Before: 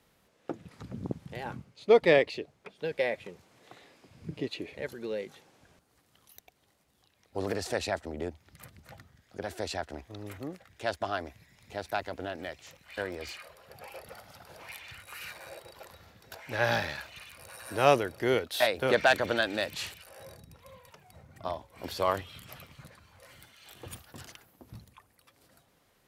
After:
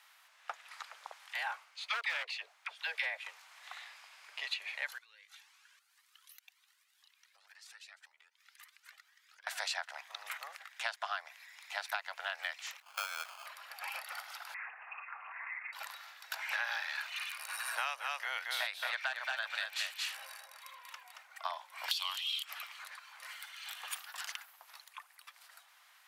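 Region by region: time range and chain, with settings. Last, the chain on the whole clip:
1.28–3.17 s: phase dispersion lows, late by 56 ms, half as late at 600 Hz + hard clipper -21 dBFS
4.98–9.47 s: peaking EQ 680 Hz -14.5 dB 1.2 oct + compression 12:1, threshold -52 dBFS + Shepard-style flanger rising 1.9 Hz
12.80–13.46 s: Butterworth band-stop 3.7 kHz, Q 0.55 + sample-rate reducer 1.9 kHz
14.54–15.73 s: compression 4:1, threshold -47 dBFS + frequency inversion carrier 2.6 kHz + loudspeaker Doppler distortion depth 0.1 ms
17.75–21.28 s: harmonic tremolo 3.6 Hz, depth 50%, crossover 1.1 kHz + delay 226 ms -5 dB
21.91–22.43 s: high-pass 870 Hz 24 dB/octave + resonant high shelf 2.3 kHz +10 dB, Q 3 + three bands compressed up and down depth 40%
whole clip: Bessel high-pass 1.5 kHz, order 8; treble shelf 3 kHz -9.5 dB; compression 12:1, threshold -47 dBFS; trim +14 dB

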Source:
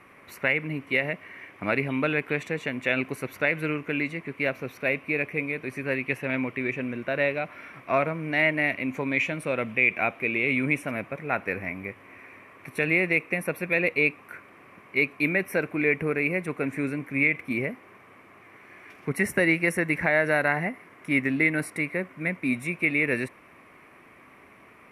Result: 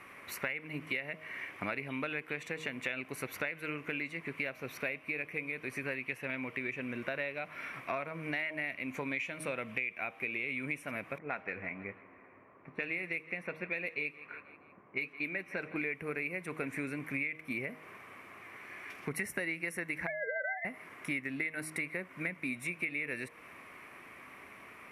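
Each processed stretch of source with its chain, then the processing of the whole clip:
11.18–15.76 s: level-controlled noise filter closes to 790 Hz, open at -19 dBFS + flange 1.2 Hz, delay 3 ms, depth 3.5 ms, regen -71% + feedback delay 160 ms, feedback 50%, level -21 dB
20.07–20.65 s: formants replaced by sine waves + compressor with a negative ratio -25 dBFS
whole clip: tilt shelf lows -3.5 dB; de-hum 156.9 Hz, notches 7; compression 6:1, threshold -34 dBFS

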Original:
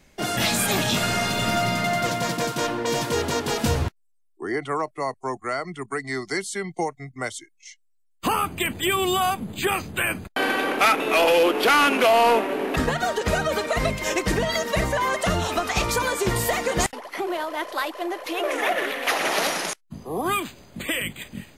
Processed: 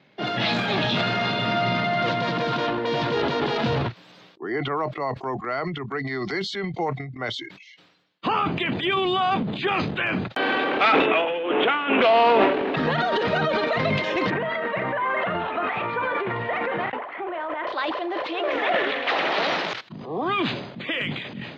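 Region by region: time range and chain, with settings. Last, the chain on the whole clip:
11.05–12.02 s: steep low-pass 3.5 kHz 72 dB/octave + compressor with a negative ratio -22 dBFS, ratio -0.5
14.30–17.67 s: low-pass 2.4 kHz 24 dB/octave + bass shelf 420 Hz -9 dB + doubling 35 ms -13.5 dB
whole clip: elliptic band-pass 120–3900 Hz, stop band 40 dB; transient shaper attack -1 dB, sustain +11 dB; decay stretcher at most 64 dB/s

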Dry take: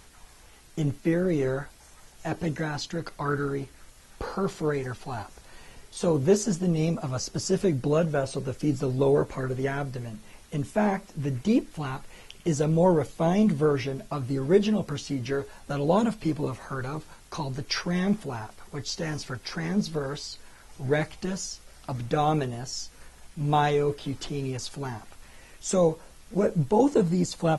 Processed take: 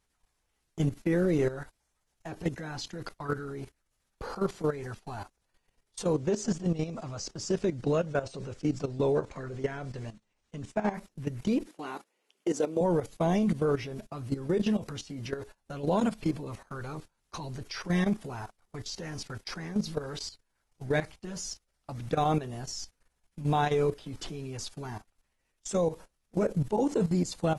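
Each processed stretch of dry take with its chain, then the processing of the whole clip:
6.13–10.94 s: low-pass 8.1 kHz 24 dB/octave + bass shelf 280 Hz -2 dB
11.67–12.81 s: high-pass 290 Hz 24 dB/octave + bass shelf 420 Hz +9.5 dB
whole clip: gate -38 dBFS, range -21 dB; peak limiter -18 dBFS; level held to a coarse grid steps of 13 dB; trim +1 dB

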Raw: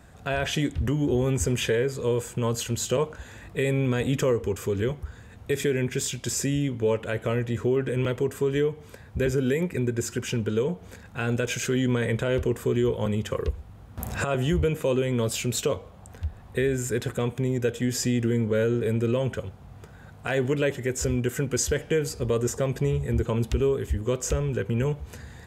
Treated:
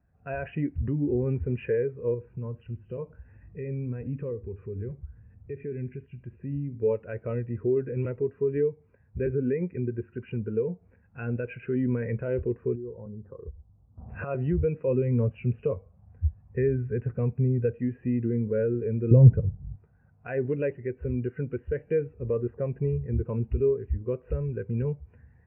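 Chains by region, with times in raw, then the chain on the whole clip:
2.14–6.79 s: bass shelf 220 Hz +7.5 dB + compression 1.5:1, threshold -38 dBFS + delay 71 ms -14.5 dB
12.75–14.09 s: inverse Chebyshev low-pass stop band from 6.8 kHz, stop band 80 dB + compression 3:1, threshold -30 dBFS
14.87–17.75 s: high-pass 54 Hz + bass shelf 170 Hz +7.5 dB + band-stop 320 Hz, Q 5.7
19.11–19.76 s: tilt EQ -4 dB/octave + comb 6.5 ms, depth 31%
whole clip: steep low-pass 2.8 kHz 96 dB/octave; spectral contrast expander 1.5:1; trim +2 dB

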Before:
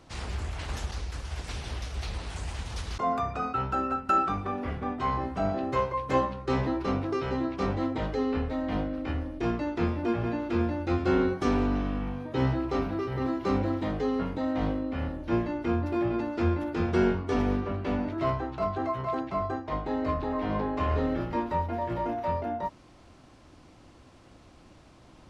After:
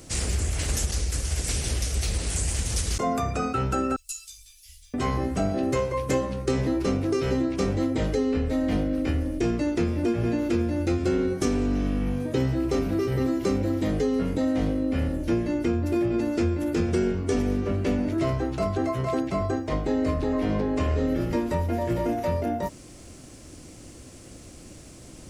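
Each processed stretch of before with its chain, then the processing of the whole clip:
3.96–4.94 s: inverse Chebyshev band-stop 170–830 Hz, stop band 80 dB + treble shelf 7.1 kHz +9 dB + three-phase chorus
whole clip: FFT filter 510 Hz 0 dB, 930 Hz -11 dB, 2.1 kHz -2 dB, 3.8 kHz -2 dB, 7.9 kHz +14 dB; compression, threshold -30 dBFS; trim +9 dB

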